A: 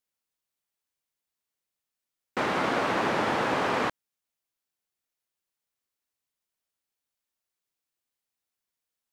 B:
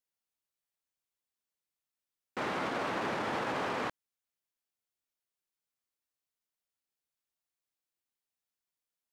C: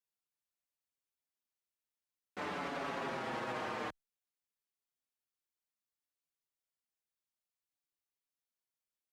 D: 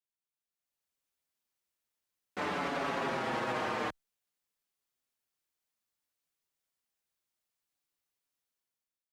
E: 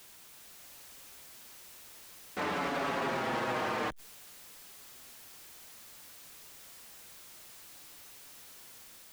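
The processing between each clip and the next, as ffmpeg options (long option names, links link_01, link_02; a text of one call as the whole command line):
ffmpeg -i in.wav -af "alimiter=limit=-20dB:level=0:latency=1:release=20,volume=-5.5dB" out.wav
ffmpeg -i in.wav -filter_complex "[0:a]asplit=2[link_01][link_02];[link_02]adelay=6,afreqshift=-0.55[link_03];[link_01][link_03]amix=inputs=2:normalize=1,volume=-2.5dB" out.wav
ffmpeg -i in.wav -af "dynaudnorm=framelen=270:gausssize=5:maxgain=12dB,volume=-6.5dB" out.wav
ffmpeg -i in.wav -af "aeval=exprs='val(0)+0.5*0.00631*sgn(val(0))':channel_layout=same" out.wav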